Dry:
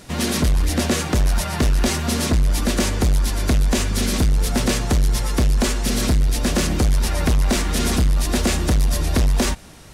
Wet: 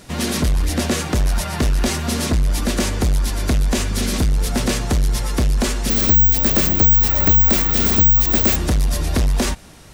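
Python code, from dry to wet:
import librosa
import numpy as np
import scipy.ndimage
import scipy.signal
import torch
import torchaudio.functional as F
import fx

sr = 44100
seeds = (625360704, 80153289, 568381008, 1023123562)

y = fx.resample_bad(x, sr, factor=2, down='filtered', up='zero_stuff', at=(5.9, 8.56))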